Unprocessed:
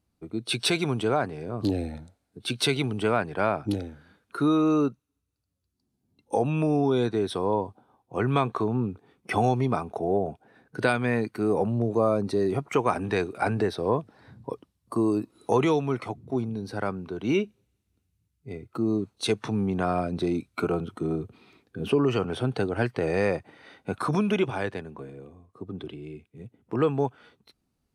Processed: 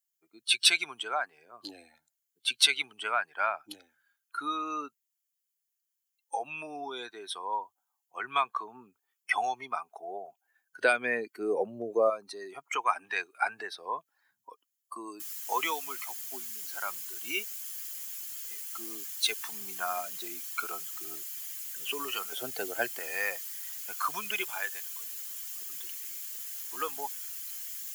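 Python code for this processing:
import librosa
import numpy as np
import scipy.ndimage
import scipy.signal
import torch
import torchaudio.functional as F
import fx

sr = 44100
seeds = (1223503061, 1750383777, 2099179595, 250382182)

y = fx.low_shelf_res(x, sr, hz=690.0, db=8.0, q=1.5, at=(10.81, 12.1))
y = fx.noise_floor_step(y, sr, seeds[0], at_s=15.2, before_db=-70, after_db=-41, tilt_db=0.0)
y = fx.low_shelf_res(y, sr, hz=770.0, db=6.0, q=1.5, at=(22.32, 22.99))
y = fx.bin_expand(y, sr, power=1.5)
y = scipy.signal.sosfilt(scipy.signal.butter(2, 1200.0, 'highpass', fs=sr, output='sos'), y)
y = F.gain(torch.from_numpy(y), 6.0).numpy()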